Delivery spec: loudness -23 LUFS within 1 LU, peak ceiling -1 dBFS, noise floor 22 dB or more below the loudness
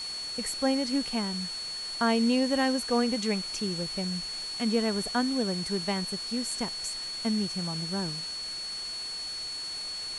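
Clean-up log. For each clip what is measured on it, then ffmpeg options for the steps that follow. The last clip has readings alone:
steady tone 4400 Hz; tone level -34 dBFS; noise floor -37 dBFS; noise floor target -52 dBFS; loudness -29.5 LUFS; peak -13.0 dBFS; loudness target -23.0 LUFS
-> -af "bandreject=f=4.4k:w=30"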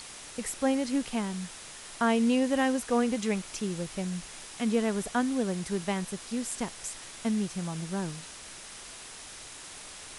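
steady tone none; noise floor -46 dBFS; noise floor target -53 dBFS
-> -af "afftdn=nr=7:nf=-46"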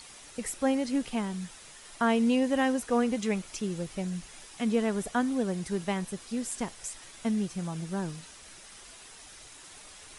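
noise floor -50 dBFS; noise floor target -53 dBFS
-> -af "afftdn=nr=6:nf=-50"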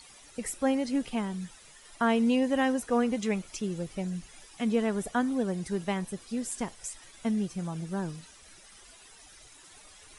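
noise floor -54 dBFS; loudness -30.5 LUFS; peak -14.0 dBFS; loudness target -23.0 LUFS
-> -af "volume=7.5dB"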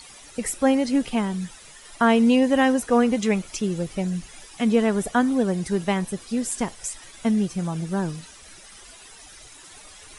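loudness -23.0 LUFS; peak -6.5 dBFS; noise floor -46 dBFS

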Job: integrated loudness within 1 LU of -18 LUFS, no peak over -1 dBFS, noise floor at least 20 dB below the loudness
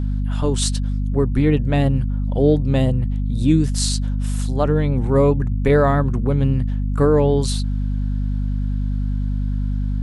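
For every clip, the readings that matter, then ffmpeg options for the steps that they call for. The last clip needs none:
hum 50 Hz; harmonics up to 250 Hz; hum level -18 dBFS; loudness -20.0 LUFS; peak -4.0 dBFS; loudness target -18.0 LUFS
-> -af "bandreject=f=50:t=h:w=6,bandreject=f=100:t=h:w=6,bandreject=f=150:t=h:w=6,bandreject=f=200:t=h:w=6,bandreject=f=250:t=h:w=6"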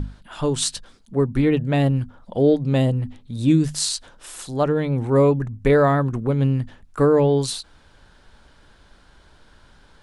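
hum none; loudness -20.5 LUFS; peak -5.5 dBFS; loudness target -18.0 LUFS
-> -af "volume=2.5dB"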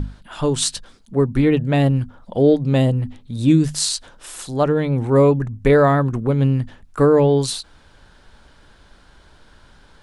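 loudness -18.0 LUFS; peak -3.0 dBFS; noise floor -51 dBFS

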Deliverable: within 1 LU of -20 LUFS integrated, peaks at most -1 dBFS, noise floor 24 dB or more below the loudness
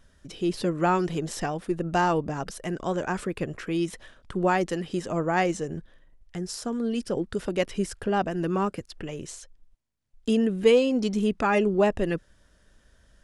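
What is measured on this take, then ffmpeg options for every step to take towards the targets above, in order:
loudness -27.0 LUFS; peak -8.5 dBFS; loudness target -20.0 LUFS
-> -af "volume=7dB"

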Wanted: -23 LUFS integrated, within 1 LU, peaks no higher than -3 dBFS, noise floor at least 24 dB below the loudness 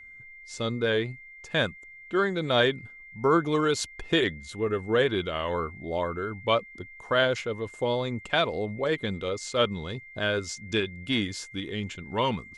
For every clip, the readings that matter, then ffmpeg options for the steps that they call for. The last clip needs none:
steady tone 2100 Hz; tone level -45 dBFS; loudness -28.0 LUFS; peak -9.5 dBFS; loudness target -23.0 LUFS
-> -af "bandreject=f=2.1k:w=30"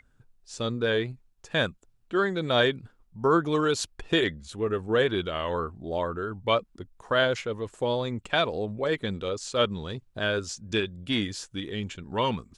steady tone none; loudness -28.0 LUFS; peak -10.0 dBFS; loudness target -23.0 LUFS
-> -af "volume=5dB"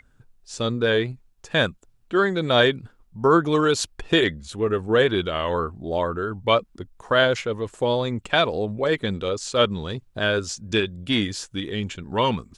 loudness -23.0 LUFS; peak -5.0 dBFS; noise floor -59 dBFS

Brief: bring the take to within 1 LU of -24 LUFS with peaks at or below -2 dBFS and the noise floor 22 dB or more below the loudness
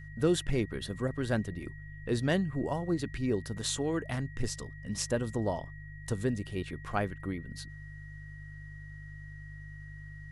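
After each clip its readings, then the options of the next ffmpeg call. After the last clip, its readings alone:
hum 50 Hz; harmonics up to 150 Hz; hum level -44 dBFS; steady tone 1900 Hz; tone level -51 dBFS; loudness -33.5 LUFS; peak -16.0 dBFS; loudness target -24.0 LUFS
-> -af "bandreject=f=50:t=h:w=4,bandreject=f=100:t=h:w=4,bandreject=f=150:t=h:w=4"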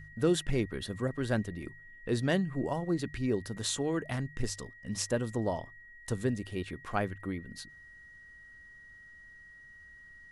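hum none; steady tone 1900 Hz; tone level -51 dBFS
-> -af "bandreject=f=1.9k:w=30"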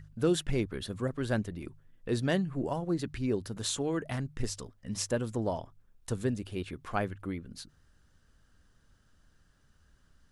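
steady tone none; loudness -33.5 LUFS; peak -15.5 dBFS; loudness target -24.0 LUFS
-> -af "volume=9.5dB"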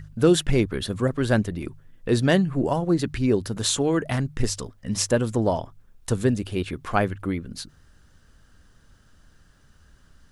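loudness -24.0 LUFS; peak -6.0 dBFS; noise floor -57 dBFS

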